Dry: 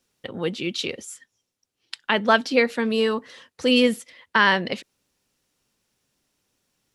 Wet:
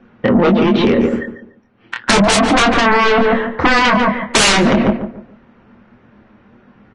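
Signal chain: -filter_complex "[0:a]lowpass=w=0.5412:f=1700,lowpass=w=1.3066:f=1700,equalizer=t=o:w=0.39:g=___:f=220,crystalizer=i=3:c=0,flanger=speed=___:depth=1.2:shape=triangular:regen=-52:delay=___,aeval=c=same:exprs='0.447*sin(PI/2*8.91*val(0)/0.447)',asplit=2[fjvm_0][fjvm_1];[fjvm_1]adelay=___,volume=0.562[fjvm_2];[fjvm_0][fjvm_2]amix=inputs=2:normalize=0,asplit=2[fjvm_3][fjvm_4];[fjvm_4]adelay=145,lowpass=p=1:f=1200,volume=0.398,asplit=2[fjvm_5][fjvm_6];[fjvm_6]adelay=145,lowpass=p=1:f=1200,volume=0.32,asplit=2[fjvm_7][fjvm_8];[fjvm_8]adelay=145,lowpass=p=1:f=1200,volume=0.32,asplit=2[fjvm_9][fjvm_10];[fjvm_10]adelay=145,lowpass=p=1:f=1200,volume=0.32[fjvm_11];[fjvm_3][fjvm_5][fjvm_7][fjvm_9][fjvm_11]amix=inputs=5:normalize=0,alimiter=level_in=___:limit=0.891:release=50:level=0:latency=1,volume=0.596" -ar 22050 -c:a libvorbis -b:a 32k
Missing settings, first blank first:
11.5, 1.5, 8.2, 25, 3.55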